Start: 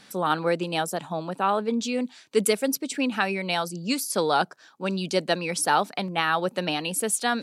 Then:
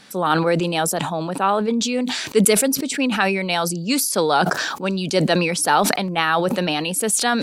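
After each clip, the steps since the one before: sustainer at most 35 dB/s; gain +4.5 dB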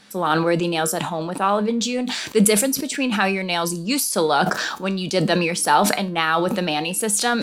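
resonator 68 Hz, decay 0.31 s, harmonics odd, mix 60%; in parallel at -8.5 dB: crossover distortion -42 dBFS; on the sum: gain +2.5 dB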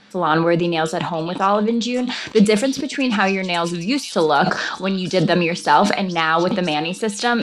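air absorption 120 m; delay with a stepping band-pass 0.541 s, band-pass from 4300 Hz, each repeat 0.7 oct, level -6 dB; gain +3 dB

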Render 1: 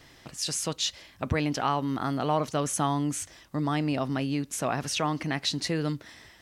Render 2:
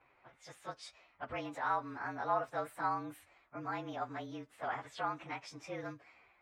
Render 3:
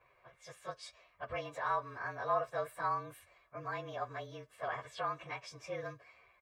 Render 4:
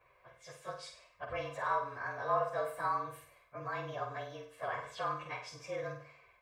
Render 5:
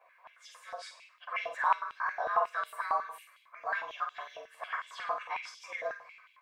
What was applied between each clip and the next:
inharmonic rescaling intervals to 110%; low-pass opened by the level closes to 2300 Hz, open at -26 dBFS; three-band isolator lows -17 dB, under 530 Hz, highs -17 dB, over 2300 Hz; gain -2.5 dB
comb 1.8 ms, depth 70%; gain -1 dB
flutter echo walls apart 8.3 m, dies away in 0.48 s
stepped high-pass 11 Hz 700–3100 Hz

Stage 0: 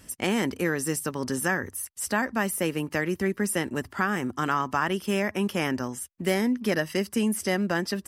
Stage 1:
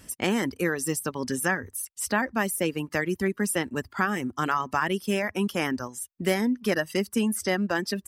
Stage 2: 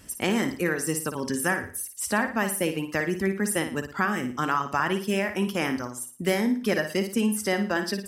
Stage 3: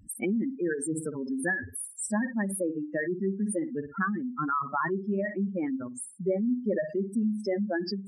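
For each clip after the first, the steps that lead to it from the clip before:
reverb removal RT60 0.97 s; gain +1 dB
flutter echo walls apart 9.7 m, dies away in 0.4 s
spectral contrast raised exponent 3.6; gain -2.5 dB

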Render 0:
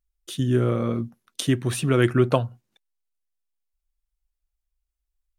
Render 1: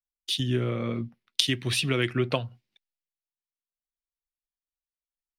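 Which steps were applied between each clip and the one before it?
band shelf 3200 Hz +12 dB; compressor 3:1, threshold -24 dBFS, peak gain reduction 10 dB; three-band expander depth 70%; gain -1 dB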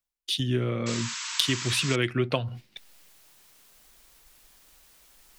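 reverse; upward compressor, threshold -27 dBFS; reverse; hard clip -8 dBFS, distortion -23 dB; painted sound noise, 0.86–1.96, 890–8000 Hz -35 dBFS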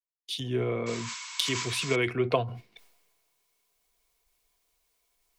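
transient shaper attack 0 dB, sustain +7 dB; small resonant body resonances 450/690/1000/2200 Hz, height 12 dB, ringing for 35 ms; three-band expander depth 40%; gain -7 dB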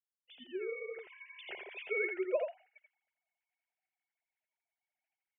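sine-wave speech; fixed phaser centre 1100 Hz, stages 6; echo 84 ms -5 dB; gain -6 dB

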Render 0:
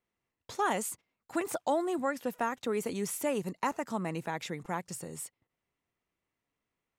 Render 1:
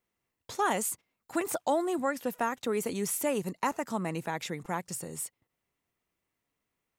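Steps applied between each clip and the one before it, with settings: high shelf 8600 Hz +6 dB; gain +1.5 dB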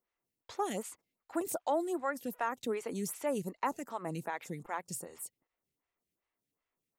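photocell phaser 2.6 Hz; gain -2.5 dB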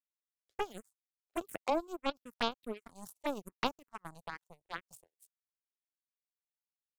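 power-law curve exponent 3; envelope phaser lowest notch 160 Hz, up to 1900 Hz, full sweep at -44 dBFS; gain +12 dB

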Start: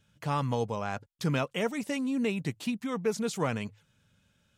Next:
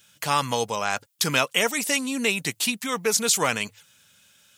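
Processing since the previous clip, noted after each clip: tilt +4 dB/oct; gain +8.5 dB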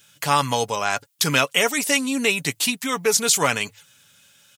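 comb 7.1 ms, depth 34%; gain +2.5 dB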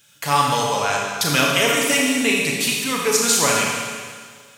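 Schroeder reverb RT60 1.8 s, combs from 27 ms, DRR -2 dB; gain -1.5 dB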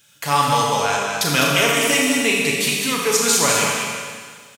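echo 0.203 s -6 dB

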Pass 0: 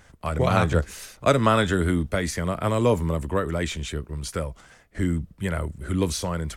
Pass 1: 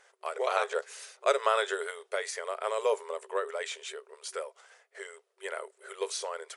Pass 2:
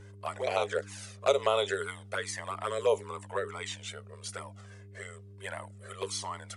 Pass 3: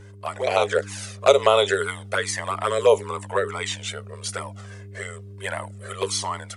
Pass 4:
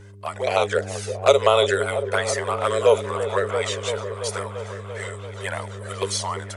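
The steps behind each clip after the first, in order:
FFT band-pass 380–11000 Hz; gain -5.5 dB
buzz 100 Hz, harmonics 4, -50 dBFS -5 dB/oct; envelope flanger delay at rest 2.2 ms, full sweep at -23.5 dBFS; gain +3 dB
AGC gain up to 4.5 dB; gain +5.5 dB
repeats that get brighter 0.339 s, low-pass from 400 Hz, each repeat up 1 oct, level -6 dB

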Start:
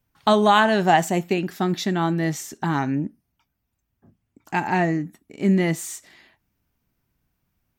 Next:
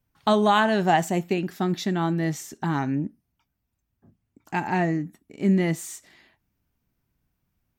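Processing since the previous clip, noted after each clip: low shelf 390 Hz +3 dB; gain -4 dB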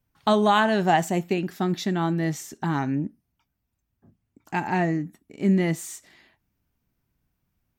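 nothing audible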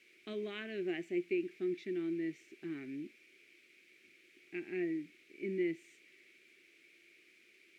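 added noise white -43 dBFS; double band-pass 900 Hz, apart 2.7 oct; gain -5 dB

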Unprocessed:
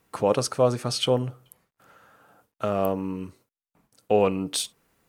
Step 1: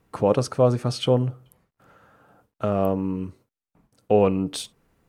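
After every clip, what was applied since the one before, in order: tilt -2 dB/oct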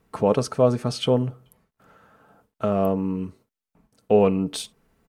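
comb 4.6 ms, depth 31%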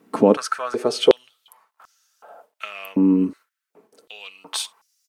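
in parallel at 0 dB: compressor, threshold -27 dBFS, peak gain reduction 14.5 dB; on the sum: stepped high-pass 2.7 Hz 260–5600 Hz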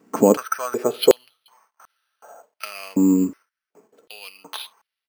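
careless resampling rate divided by 6×, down filtered, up hold

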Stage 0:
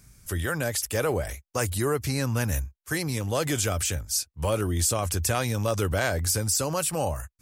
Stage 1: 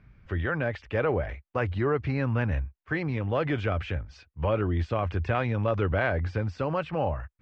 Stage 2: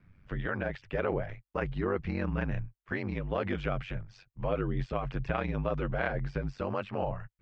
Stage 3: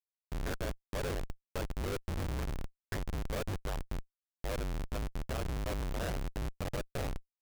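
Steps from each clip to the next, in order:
inverse Chebyshev low-pass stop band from 10000 Hz, stop band 70 dB
ring modulator 48 Hz; gain -2 dB
fixed phaser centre 950 Hz, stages 6; Schmitt trigger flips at -32.5 dBFS; gain +1 dB

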